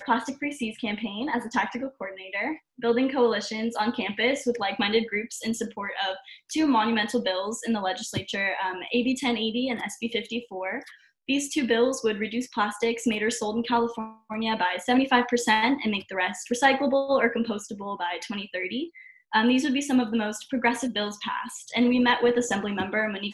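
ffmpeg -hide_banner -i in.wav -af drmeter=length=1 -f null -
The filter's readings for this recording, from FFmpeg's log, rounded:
Channel 1: DR: 14.7
Overall DR: 14.7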